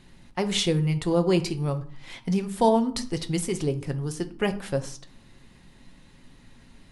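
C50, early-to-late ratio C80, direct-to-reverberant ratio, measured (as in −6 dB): 15.5 dB, 19.0 dB, 7.5 dB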